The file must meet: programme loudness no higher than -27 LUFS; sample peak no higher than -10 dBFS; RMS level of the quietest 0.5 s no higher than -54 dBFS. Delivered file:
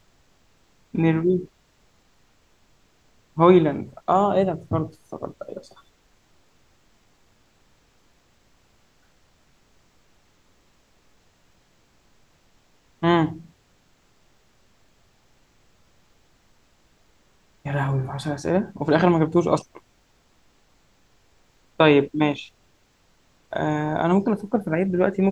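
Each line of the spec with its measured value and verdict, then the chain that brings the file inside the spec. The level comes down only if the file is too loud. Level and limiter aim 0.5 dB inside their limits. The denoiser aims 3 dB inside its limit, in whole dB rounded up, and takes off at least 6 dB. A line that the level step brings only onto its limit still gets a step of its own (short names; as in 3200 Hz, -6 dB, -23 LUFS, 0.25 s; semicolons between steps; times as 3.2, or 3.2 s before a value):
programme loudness -22.0 LUFS: fail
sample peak -3.0 dBFS: fail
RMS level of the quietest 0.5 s -61 dBFS: OK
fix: gain -5.5 dB; limiter -10.5 dBFS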